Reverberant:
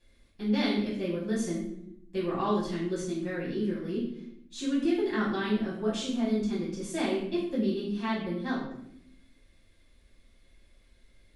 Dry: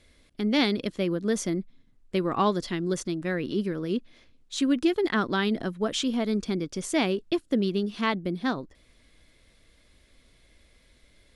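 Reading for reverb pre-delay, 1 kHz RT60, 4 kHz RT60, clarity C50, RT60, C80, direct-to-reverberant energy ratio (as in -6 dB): 3 ms, 0.65 s, 0.50 s, 3.0 dB, 0.75 s, 6.5 dB, -9.0 dB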